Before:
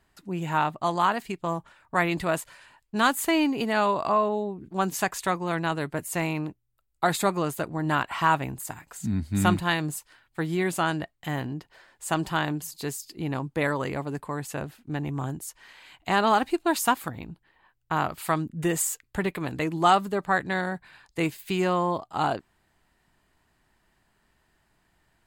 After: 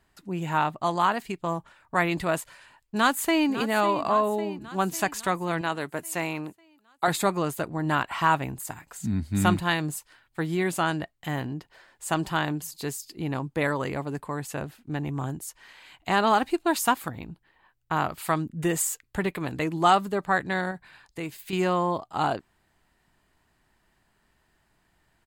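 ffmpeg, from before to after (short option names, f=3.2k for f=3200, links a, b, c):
-filter_complex "[0:a]asplit=2[a][b];[b]afade=t=in:st=2.41:d=0.01,afade=t=out:st=3.48:d=0.01,aecho=0:1:550|1100|1650|2200|2750|3300|3850:0.237137|0.142282|0.0853695|0.0512217|0.030733|0.0184398|0.0110639[c];[a][c]amix=inputs=2:normalize=0,asettb=1/sr,asplit=3[d][e][f];[d]atrim=end=5.614[g];[e]atrim=start=5.61:end=7.08,asetpts=PTS-STARTPTS,afade=t=in:d=0.004:c=qsin,afade=t=out:st=1.466:d=0.004:c=qsin,highpass=f=300:p=1[h];[f]atrim=start=7.076[i];[g][h]acrossfade=d=0.004:c1=hsin:c2=qsin[j];[j][i]acrossfade=d=0.004:c1=qsin:c2=hsin,asettb=1/sr,asplit=3[k][l][m];[k]atrim=end=20.714[n];[l]atrim=start=20.71:end=21.53,asetpts=PTS-STARTPTS,afade=t=in:d=0.004:c=qsin,afade=t=out:st=0.816:d=0.004:c=qsin,acompressor=threshold=-35dB:ratio=2:attack=3.2:release=140:knee=1:detection=peak[o];[m]atrim=start=21.526[p];[n][o]acrossfade=d=0.004:c1=hsin:c2=qsin[q];[q][p]acrossfade=d=0.004:c1=qsin:c2=hsin"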